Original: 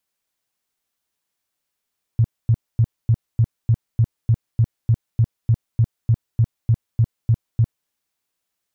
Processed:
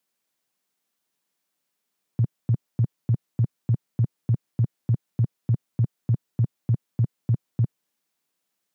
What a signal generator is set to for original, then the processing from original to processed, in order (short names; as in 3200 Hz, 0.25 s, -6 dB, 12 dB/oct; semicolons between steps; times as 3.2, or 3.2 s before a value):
tone bursts 114 Hz, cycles 6, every 0.30 s, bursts 19, -11 dBFS
HPF 150 Hz 24 dB/oct; low shelf 310 Hz +6 dB